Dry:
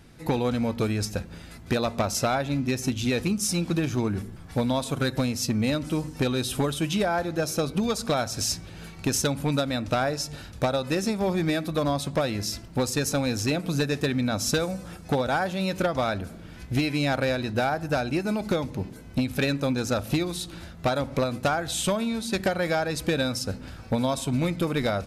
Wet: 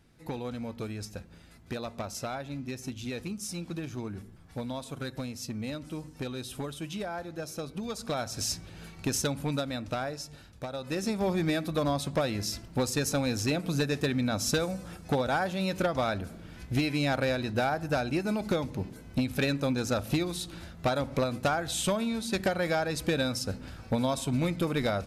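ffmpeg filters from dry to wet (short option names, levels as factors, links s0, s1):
-af "volume=2,afade=t=in:st=7.81:d=0.65:silence=0.473151,afade=t=out:st=9.22:d=1.46:silence=0.354813,afade=t=in:st=10.68:d=0.49:silence=0.298538"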